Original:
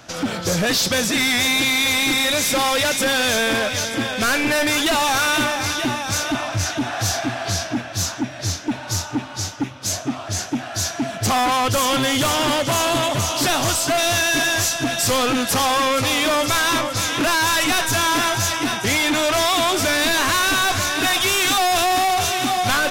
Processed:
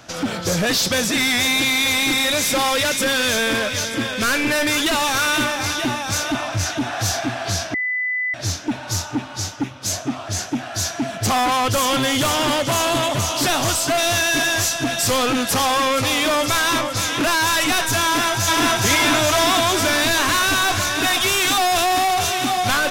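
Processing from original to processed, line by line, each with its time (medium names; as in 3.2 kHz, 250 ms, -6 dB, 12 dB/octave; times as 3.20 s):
2.75–5.59 s: peaking EQ 750 Hz -10 dB 0.22 oct
7.74–8.34 s: bleep 2 kHz -19.5 dBFS
18.05–18.81 s: echo throw 420 ms, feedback 70%, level 0 dB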